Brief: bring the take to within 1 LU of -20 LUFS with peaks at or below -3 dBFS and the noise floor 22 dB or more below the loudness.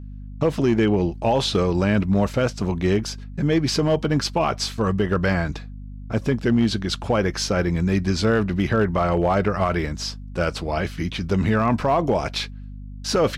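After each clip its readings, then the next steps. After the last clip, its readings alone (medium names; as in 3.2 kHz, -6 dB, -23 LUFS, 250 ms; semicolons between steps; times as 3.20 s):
clipped samples 0.7%; clipping level -12.0 dBFS; hum 50 Hz; highest harmonic 250 Hz; hum level -33 dBFS; loudness -22.0 LUFS; peak level -12.0 dBFS; loudness target -20.0 LUFS
-> clip repair -12 dBFS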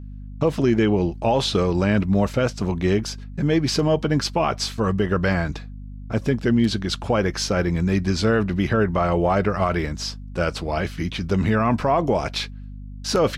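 clipped samples 0.0%; hum 50 Hz; highest harmonic 250 Hz; hum level -33 dBFS
-> hum notches 50/100/150/200/250 Hz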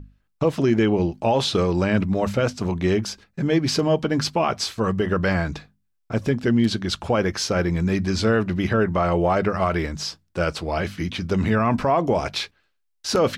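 hum not found; loudness -22.5 LUFS; peak level -8.0 dBFS; loudness target -20.0 LUFS
-> trim +2.5 dB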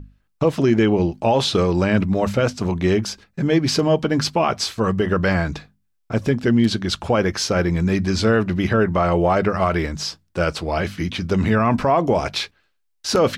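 loudness -20.0 LUFS; peak level -5.5 dBFS; noise floor -68 dBFS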